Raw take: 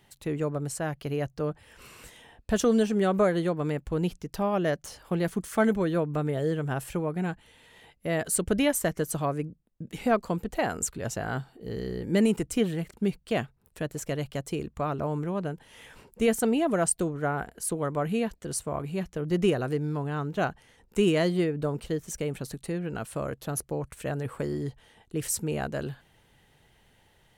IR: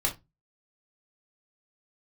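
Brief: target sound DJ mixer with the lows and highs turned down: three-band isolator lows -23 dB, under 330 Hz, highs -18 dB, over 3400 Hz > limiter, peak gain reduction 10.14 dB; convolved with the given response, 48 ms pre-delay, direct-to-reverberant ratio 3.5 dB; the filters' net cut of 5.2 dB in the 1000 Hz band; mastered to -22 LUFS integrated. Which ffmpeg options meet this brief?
-filter_complex "[0:a]equalizer=f=1k:t=o:g=-7.5,asplit=2[a][b];[1:a]atrim=start_sample=2205,adelay=48[c];[b][c]afir=irnorm=-1:irlink=0,volume=-11dB[d];[a][d]amix=inputs=2:normalize=0,acrossover=split=330 3400:gain=0.0708 1 0.126[e][f][g];[e][f][g]amix=inputs=3:normalize=0,volume=14.5dB,alimiter=limit=-10dB:level=0:latency=1"

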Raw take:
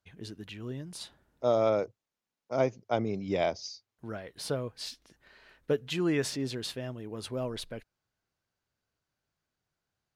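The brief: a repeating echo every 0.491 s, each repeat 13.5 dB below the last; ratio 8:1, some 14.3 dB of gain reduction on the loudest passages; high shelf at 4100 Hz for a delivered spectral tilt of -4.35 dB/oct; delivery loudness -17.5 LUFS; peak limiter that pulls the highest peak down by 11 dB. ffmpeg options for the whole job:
-af "highshelf=f=4.1k:g=3.5,acompressor=threshold=-37dB:ratio=8,alimiter=level_in=10dB:limit=-24dB:level=0:latency=1,volume=-10dB,aecho=1:1:491|982:0.211|0.0444,volume=27dB"

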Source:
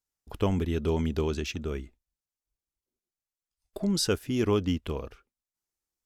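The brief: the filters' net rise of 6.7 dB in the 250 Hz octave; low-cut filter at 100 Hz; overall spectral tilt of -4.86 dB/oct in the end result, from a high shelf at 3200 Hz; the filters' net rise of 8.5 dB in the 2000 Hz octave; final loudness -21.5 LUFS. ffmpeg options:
-af "highpass=100,equalizer=f=250:t=o:g=8.5,equalizer=f=2k:t=o:g=9,highshelf=f=3.2k:g=6.5,volume=3dB"

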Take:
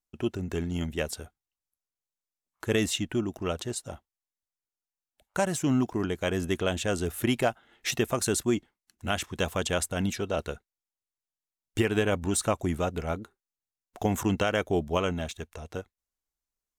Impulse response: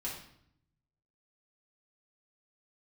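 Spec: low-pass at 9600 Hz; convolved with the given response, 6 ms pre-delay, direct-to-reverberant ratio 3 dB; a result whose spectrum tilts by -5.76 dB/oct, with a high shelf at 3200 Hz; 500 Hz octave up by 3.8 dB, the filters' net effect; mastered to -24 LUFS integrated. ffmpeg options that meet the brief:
-filter_complex "[0:a]lowpass=9.6k,equalizer=f=500:t=o:g=5,highshelf=f=3.2k:g=-7,asplit=2[a][b];[1:a]atrim=start_sample=2205,adelay=6[c];[b][c]afir=irnorm=-1:irlink=0,volume=-4dB[d];[a][d]amix=inputs=2:normalize=0,volume=2.5dB"

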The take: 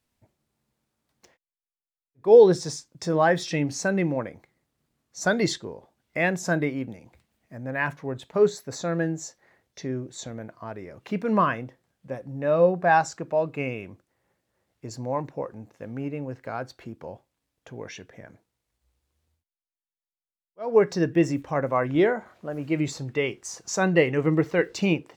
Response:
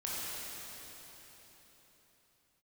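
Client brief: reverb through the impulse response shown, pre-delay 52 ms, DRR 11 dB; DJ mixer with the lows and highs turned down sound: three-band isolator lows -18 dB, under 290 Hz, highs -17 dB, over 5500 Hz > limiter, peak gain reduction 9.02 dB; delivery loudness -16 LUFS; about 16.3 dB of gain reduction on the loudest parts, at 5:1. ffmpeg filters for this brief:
-filter_complex "[0:a]acompressor=threshold=-28dB:ratio=5,asplit=2[a][b];[1:a]atrim=start_sample=2205,adelay=52[c];[b][c]afir=irnorm=-1:irlink=0,volume=-15.5dB[d];[a][d]amix=inputs=2:normalize=0,acrossover=split=290 5500:gain=0.126 1 0.141[e][f][g];[e][f][g]amix=inputs=3:normalize=0,volume=23dB,alimiter=limit=-4.5dB:level=0:latency=1"

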